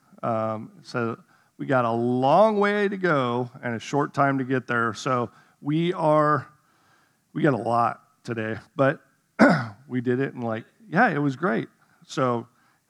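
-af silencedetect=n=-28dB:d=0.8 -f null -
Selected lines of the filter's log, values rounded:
silence_start: 6.40
silence_end: 7.36 | silence_duration: 0.96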